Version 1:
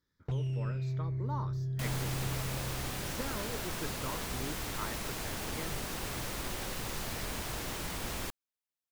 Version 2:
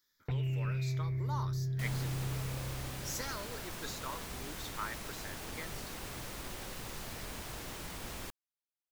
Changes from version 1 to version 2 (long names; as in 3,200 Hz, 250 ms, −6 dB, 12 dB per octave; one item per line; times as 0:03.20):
speech: add spectral tilt +4.5 dB per octave
first sound: add low-pass with resonance 2,300 Hz, resonance Q 3.6
second sound −5.5 dB